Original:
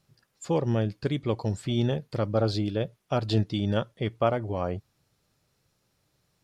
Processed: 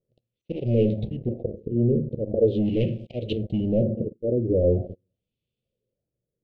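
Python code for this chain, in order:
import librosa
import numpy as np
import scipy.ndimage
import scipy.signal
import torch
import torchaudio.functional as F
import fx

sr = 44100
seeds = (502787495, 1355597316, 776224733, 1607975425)

y = fx.auto_swell(x, sr, attack_ms=650.0)
y = fx.hum_notches(y, sr, base_hz=50, count=4)
y = fx.rev_fdn(y, sr, rt60_s=0.51, lf_ratio=1.55, hf_ratio=0.55, size_ms=26.0, drr_db=11.0)
y = fx.leveller(y, sr, passes=5)
y = fx.formant_shift(y, sr, semitones=-3)
y = fx.filter_lfo_lowpass(y, sr, shape='sine', hz=0.41, low_hz=360.0, high_hz=2500.0, q=2.2)
y = scipy.signal.sosfilt(scipy.signal.ellip(3, 1.0, 60, [530.0, 2900.0], 'bandstop', fs=sr, output='sos'), y)
y = fx.bell_lfo(y, sr, hz=1.2, low_hz=450.0, high_hz=1500.0, db=13)
y = y * librosa.db_to_amplitude(-2.5)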